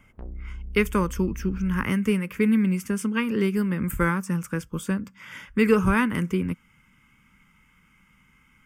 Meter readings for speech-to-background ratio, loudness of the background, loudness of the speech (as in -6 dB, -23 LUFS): 15.0 dB, -40.0 LUFS, -25.0 LUFS